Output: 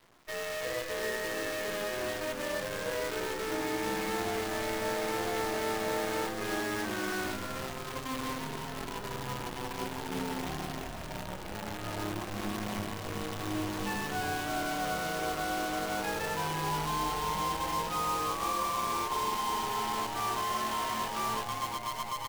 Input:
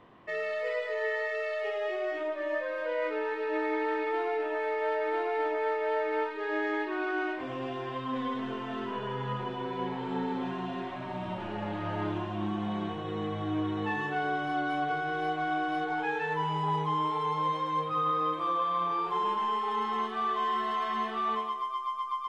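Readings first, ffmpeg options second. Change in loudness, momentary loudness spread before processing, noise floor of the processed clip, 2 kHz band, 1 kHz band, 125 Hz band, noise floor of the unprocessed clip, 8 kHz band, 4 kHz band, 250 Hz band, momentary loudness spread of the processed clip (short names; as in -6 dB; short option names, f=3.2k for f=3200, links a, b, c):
-2.0 dB, 6 LU, -40 dBFS, -1.5 dB, -3.0 dB, -1.5 dB, -37 dBFS, n/a, +5.5 dB, -2.5 dB, 7 LU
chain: -filter_complex "[0:a]acrusher=bits=6:dc=4:mix=0:aa=0.000001,asplit=9[a][b][c][d][e][f][g][h][i];[b]adelay=344,afreqshift=-110,volume=-6dB[j];[c]adelay=688,afreqshift=-220,volume=-10.7dB[k];[d]adelay=1032,afreqshift=-330,volume=-15.5dB[l];[e]adelay=1376,afreqshift=-440,volume=-20.2dB[m];[f]adelay=1720,afreqshift=-550,volume=-24.9dB[n];[g]adelay=2064,afreqshift=-660,volume=-29.7dB[o];[h]adelay=2408,afreqshift=-770,volume=-34.4dB[p];[i]adelay=2752,afreqshift=-880,volume=-39.1dB[q];[a][j][k][l][m][n][o][p][q]amix=inputs=9:normalize=0,volume=-4.5dB"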